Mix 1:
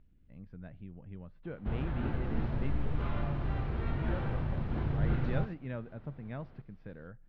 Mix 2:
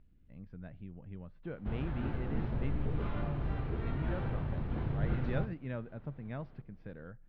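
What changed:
first sound: send off
second sound: add tilt shelving filter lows +9.5 dB, about 760 Hz

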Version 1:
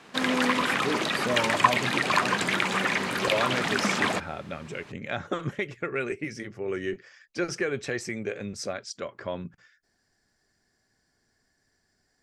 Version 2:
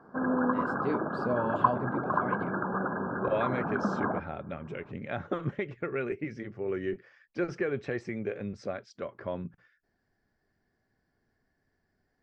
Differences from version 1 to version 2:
background: add linear-phase brick-wall low-pass 1,700 Hz
master: add head-to-tape spacing loss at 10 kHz 33 dB

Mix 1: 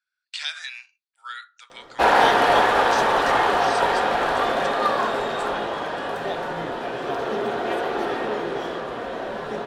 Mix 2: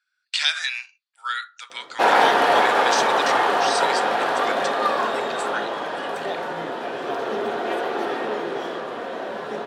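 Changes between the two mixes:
speech +8.5 dB
master: add high-pass filter 190 Hz 12 dB per octave

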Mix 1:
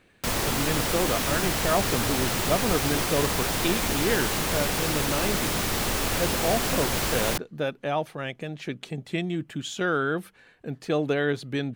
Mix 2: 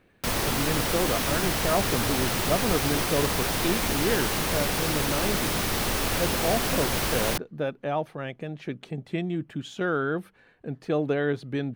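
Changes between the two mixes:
speech: add high-shelf EQ 2,300 Hz −9.5 dB
master: add parametric band 7,300 Hz −3.5 dB 0.27 octaves

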